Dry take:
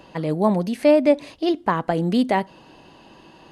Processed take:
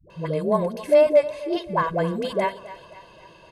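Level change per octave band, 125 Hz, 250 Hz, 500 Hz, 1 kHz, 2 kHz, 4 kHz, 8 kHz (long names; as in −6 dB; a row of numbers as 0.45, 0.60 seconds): −3.5 dB, −8.5 dB, +1.0 dB, −2.0 dB, −1.5 dB, −3.5 dB, can't be measured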